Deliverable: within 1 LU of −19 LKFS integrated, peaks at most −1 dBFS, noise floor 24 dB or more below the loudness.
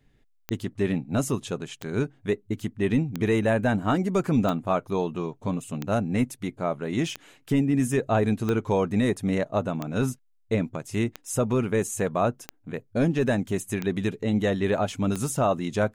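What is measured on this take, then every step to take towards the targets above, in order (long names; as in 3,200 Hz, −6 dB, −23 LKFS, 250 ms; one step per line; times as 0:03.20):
number of clicks 12; integrated loudness −26.5 LKFS; sample peak −13.0 dBFS; target loudness −19.0 LKFS
→ click removal
level +7.5 dB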